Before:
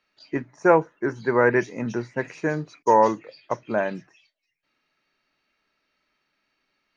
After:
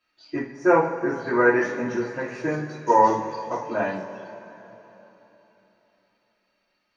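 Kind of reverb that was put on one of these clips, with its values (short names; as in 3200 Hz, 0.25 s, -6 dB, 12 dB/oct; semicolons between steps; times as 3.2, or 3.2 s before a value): two-slope reverb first 0.38 s, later 3.7 s, from -18 dB, DRR -7.5 dB; gain -8 dB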